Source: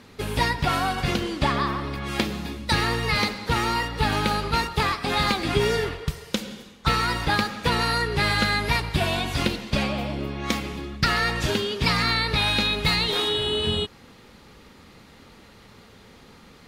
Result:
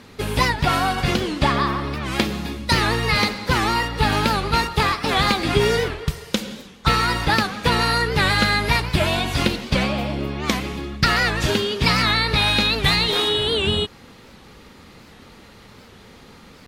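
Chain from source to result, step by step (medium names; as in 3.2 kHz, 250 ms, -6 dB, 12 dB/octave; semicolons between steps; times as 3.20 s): warped record 78 rpm, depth 160 cents; trim +4 dB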